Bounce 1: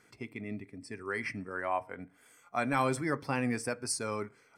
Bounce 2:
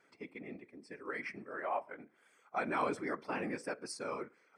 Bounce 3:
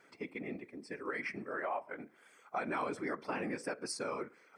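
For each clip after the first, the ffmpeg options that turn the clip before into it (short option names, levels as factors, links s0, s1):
-af "afftfilt=real='hypot(re,im)*cos(2*PI*random(0))':imag='hypot(re,im)*sin(2*PI*random(1))':win_size=512:overlap=0.75,highpass=260,aemphasis=mode=reproduction:type=50fm,volume=1.26"
-af "acompressor=threshold=0.00891:ratio=3,volume=1.88"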